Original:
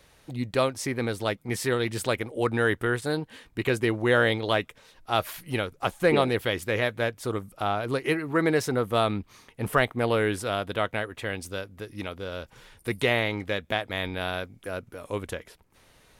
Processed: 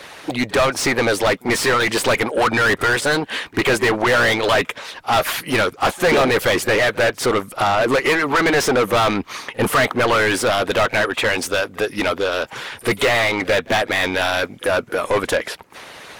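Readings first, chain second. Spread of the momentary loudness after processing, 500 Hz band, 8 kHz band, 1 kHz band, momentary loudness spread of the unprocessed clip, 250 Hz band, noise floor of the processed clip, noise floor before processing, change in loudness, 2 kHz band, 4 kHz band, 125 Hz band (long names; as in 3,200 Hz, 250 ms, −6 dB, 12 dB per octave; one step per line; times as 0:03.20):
7 LU, +8.5 dB, +13.5 dB, +11.0 dB, 13 LU, +6.5 dB, −42 dBFS, −60 dBFS, +9.5 dB, +11.5 dB, +11.0 dB, +3.0 dB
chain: harmonic and percussive parts rebalanced harmonic −11 dB
mid-hump overdrive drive 35 dB, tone 3,000 Hz, clips at −7.5 dBFS
echo ahead of the sound 44 ms −23 dB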